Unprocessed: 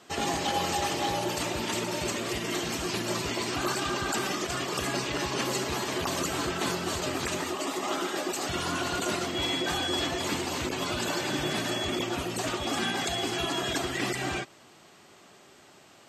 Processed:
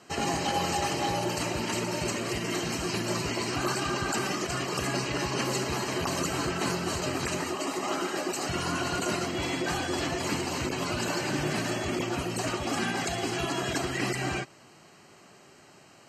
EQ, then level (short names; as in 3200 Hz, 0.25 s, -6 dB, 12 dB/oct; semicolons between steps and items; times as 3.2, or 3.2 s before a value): Butterworth band-stop 3500 Hz, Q 6.3; LPF 12000 Hz 12 dB/oct; bell 140 Hz +4.5 dB 1 oct; 0.0 dB